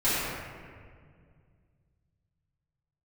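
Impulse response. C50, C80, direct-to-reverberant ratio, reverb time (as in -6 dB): -4.0 dB, -2.0 dB, -15.0 dB, 2.0 s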